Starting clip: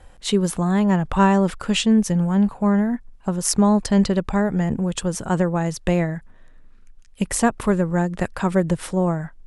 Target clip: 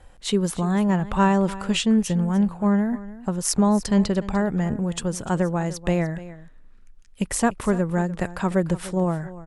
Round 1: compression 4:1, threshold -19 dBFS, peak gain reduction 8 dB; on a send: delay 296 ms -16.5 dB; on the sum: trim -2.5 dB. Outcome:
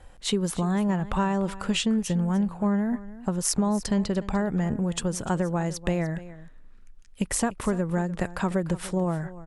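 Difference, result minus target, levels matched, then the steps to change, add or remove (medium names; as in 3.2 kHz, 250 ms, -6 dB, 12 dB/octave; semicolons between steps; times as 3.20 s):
compression: peak gain reduction +8 dB
remove: compression 4:1, threshold -19 dBFS, peak gain reduction 8 dB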